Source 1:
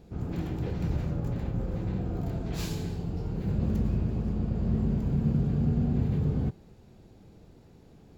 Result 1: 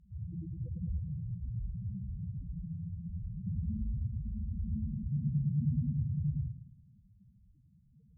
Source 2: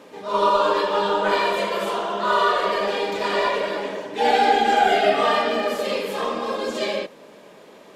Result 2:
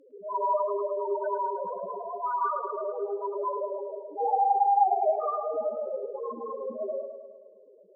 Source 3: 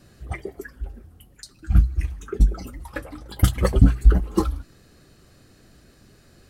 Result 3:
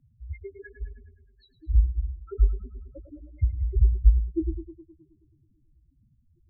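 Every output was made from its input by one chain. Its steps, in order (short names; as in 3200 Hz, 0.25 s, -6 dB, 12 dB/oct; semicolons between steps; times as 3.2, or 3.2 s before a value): nonlinear frequency compression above 3300 Hz 1.5:1; loudest bins only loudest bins 2; on a send: tape echo 0.106 s, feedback 65%, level -8.5 dB, low-pass 3000 Hz; on the sum: treble ducked by the level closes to 2500 Hz, closed at -20.5 dBFS; gain -2.5 dB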